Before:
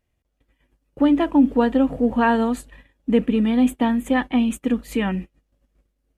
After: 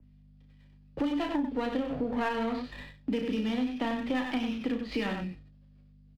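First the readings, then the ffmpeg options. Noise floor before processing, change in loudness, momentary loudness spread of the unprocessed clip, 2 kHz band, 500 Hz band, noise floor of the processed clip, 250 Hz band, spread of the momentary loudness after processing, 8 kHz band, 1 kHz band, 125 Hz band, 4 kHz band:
−74 dBFS, −11.5 dB, 8 LU, −8.5 dB, −10.5 dB, −57 dBFS, −12.0 dB, 8 LU, below −15 dB, −10.5 dB, −10.0 dB, −4.0 dB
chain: -filter_complex "[0:a]aeval=exprs='val(0)+0.00501*(sin(2*PI*50*n/s)+sin(2*PI*2*50*n/s)/2+sin(2*PI*3*50*n/s)/3+sin(2*PI*4*50*n/s)/4+sin(2*PI*5*50*n/s)/5)':channel_layout=same,asplit=2[link_01][link_02];[link_02]adelay=28,volume=-8dB[link_03];[link_01][link_03]amix=inputs=2:normalize=0,acrossover=split=120|3000[link_04][link_05][link_06];[link_05]acompressor=threshold=-17dB:ratio=6[link_07];[link_04][link_07][link_06]amix=inputs=3:normalize=0,aresample=11025,aresample=44100,agate=range=-9dB:threshold=-45dB:ratio=16:detection=peak,aecho=1:1:34.99|93.29:0.398|0.447,acrossover=split=150|760|3700[link_08][link_09][link_10][link_11];[link_10]aeval=exprs='max(val(0),0)':channel_layout=same[link_12];[link_08][link_09][link_12][link_11]amix=inputs=4:normalize=0,tiltshelf=frequency=690:gain=-6,acompressor=threshold=-38dB:ratio=3,adynamicequalizer=threshold=0.00141:dfrequency=3200:dqfactor=0.7:tfrequency=3200:tqfactor=0.7:attack=5:release=100:ratio=0.375:range=3:mode=cutabove:tftype=highshelf,volume=6dB"

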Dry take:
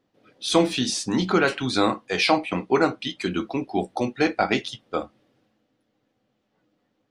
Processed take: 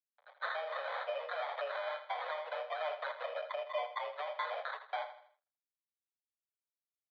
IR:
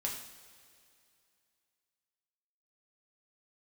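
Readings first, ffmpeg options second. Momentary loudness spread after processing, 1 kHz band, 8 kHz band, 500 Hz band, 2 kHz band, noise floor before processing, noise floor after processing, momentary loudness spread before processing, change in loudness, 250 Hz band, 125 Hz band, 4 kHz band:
3 LU, −11.5 dB, below −40 dB, −14.0 dB, −13.0 dB, −73 dBFS, below −85 dBFS, 10 LU, −15.5 dB, below −40 dB, below −40 dB, −20.0 dB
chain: -filter_complex "[0:a]agate=range=-33dB:threshold=-56dB:ratio=3:detection=peak,aecho=1:1:6.8:0.9,acontrast=72,alimiter=limit=-14dB:level=0:latency=1:release=22,acompressor=threshold=-28dB:ratio=10,flanger=delay=5.6:depth=3.6:regen=36:speed=1.1:shape=triangular,acrusher=samples=18:mix=1:aa=0.000001,aeval=exprs='sgn(val(0))*max(abs(val(0))-0.002,0)':channel_layout=same,asplit=2[link_01][link_02];[link_02]aecho=0:1:81|162|243|324:0.282|0.11|0.0429|0.0167[link_03];[link_01][link_03]amix=inputs=2:normalize=0,highpass=frequency=220:width_type=q:width=0.5412,highpass=frequency=220:width_type=q:width=1.307,lowpass=frequency=3400:width_type=q:width=0.5176,lowpass=frequency=3400:width_type=q:width=0.7071,lowpass=frequency=3400:width_type=q:width=1.932,afreqshift=300,volume=-2dB"

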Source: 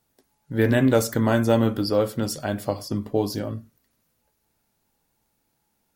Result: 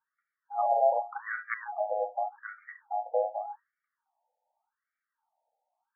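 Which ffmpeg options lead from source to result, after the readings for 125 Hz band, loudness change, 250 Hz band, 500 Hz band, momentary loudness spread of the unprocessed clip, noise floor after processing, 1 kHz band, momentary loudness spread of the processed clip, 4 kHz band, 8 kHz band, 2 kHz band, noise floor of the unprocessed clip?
below −40 dB, −8.0 dB, below −40 dB, −7.5 dB, 11 LU, below −85 dBFS, +3.0 dB, 18 LU, below −40 dB, below −40 dB, −6.0 dB, −73 dBFS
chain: -af "afftfilt=real='real(if(between(b,1,1008),(2*floor((b-1)/48)+1)*48-b,b),0)':imag='imag(if(between(b,1,1008),(2*floor((b-1)/48)+1)*48-b,b),0)*if(between(b,1,1008),-1,1)':win_size=2048:overlap=0.75,aeval=exprs='(mod(2.51*val(0)+1,2)-1)/2.51':channel_layout=same,highpass=frequency=210:width_type=q:width=0.5412,highpass=frequency=210:width_type=q:width=1.307,lowpass=frequency=2600:width_type=q:width=0.5176,lowpass=frequency=2600:width_type=q:width=0.7071,lowpass=frequency=2600:width_type=q:width=1.932,afreqshift=-97,afftfilt=real='re*between(b*sr/1024,640*pow(1700/640,0.5+0.5*sin(2*PI*0.85*pts/sr))/1.41,640*pow(1700/640,0.5+0.5*sin(2*PI*0.85*pts/sr))*1.41)':imag='im*between(b*sr/1024,640*pow(1700/640,0.5+0.5*sin(2*PI*0.85*pts/sr))/1.41,640*pow(1700/640,0.5+0.5*sin(2*PI*0.85*pts/sr))*1.41)':win_size=1024:overlap=0.75,volume=-4.5dB"

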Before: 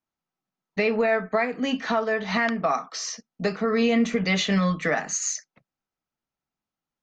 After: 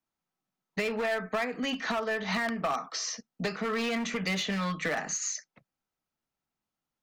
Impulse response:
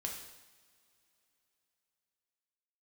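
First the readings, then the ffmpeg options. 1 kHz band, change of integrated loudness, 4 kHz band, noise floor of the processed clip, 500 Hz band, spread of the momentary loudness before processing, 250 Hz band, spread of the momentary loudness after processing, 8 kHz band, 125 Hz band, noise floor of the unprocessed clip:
−6.0 dB, −6.5 dB, −3.5 dB, below −85 dBFS, −8.0 dB, 8 LU, −8.5 dB, 5 LU, −4.5 dB, −8.0 dB, below −85 dBFS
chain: -filter_complex "[0:a]asoftclip=type=hard:threshold=-19dB,acrossover=split=100|930|7200[link_01][link_02][link_03][link_04];[link_01]acompressor=threshold=-55dB:ratio=4[link_05];[link_02]acompressor=threshold=-32dB:ratio=4[link_06];[link_03]acompressor=threshold=-31dB:ratio=4[link_07];[link_04]acompressor=threshold=-49dB:ratio=4[link_08];[link_05][link_06][link_07][link_08]amix=inputs=4:normalize=0"

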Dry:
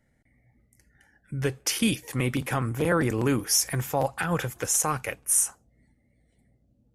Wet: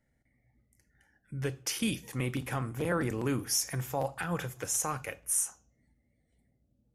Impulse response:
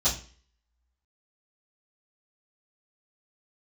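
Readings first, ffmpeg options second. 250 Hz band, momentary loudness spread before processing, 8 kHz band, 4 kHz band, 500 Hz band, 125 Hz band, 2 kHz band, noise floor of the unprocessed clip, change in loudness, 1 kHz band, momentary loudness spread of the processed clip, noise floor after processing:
−6.5 dB, 7 LU, −7.0 dB, −6.5 dB, −7.0 dB, −6.0 dB, −7.0 dB, −68 dBFS, −6.5 dB, −7.0 dB, 6 LU, −75 dBFS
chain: -filter_complex "[0:a]asplit=2[link_01][link_02];[1:a]atrim=start_sample=2205,adelay=21[link_03];[link_02][link_03]afir=irnorm=-1:irlink=0,volume=-25.5dB[link_04];[link_01][link_04]amix=inputs=2:normalize=0,volume=-7dB"

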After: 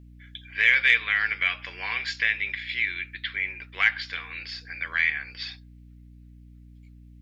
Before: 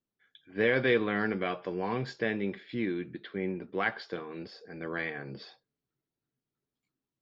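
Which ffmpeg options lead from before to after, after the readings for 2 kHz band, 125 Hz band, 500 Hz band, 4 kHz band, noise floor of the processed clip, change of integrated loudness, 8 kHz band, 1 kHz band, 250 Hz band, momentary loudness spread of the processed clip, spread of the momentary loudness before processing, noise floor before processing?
+12.0 dB, −5.5 dB, −18.0 dB, +12.5 dB, −49 dBFS, +7.5 dB, can't be measured, −1.0 dB, −17.0 dB, 17 LU, 16 LU, below −85 dBFS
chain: -filter_complex "[0:a]highpass=frequency=2200:width_type=q:width=2.8,asplit=2[link_01][link_02];[link_02]acompressor=threshold=-38dB:ratio=6,volume=2dB[link_03];[link_01][link_03]amix=inputs=2:normalize=0,aeval=exprs='val(0)+0.00251*(sin(2*PI*60*n/s)+sin(2*PI*2*60*n/s)/2+sin(2*PI*3*60*n/s)/3+sin(2*PI*4*60*n/s)/4+sin(2*PI*5*60*n/s)/5)':channel_layout=same,acontrast=23"

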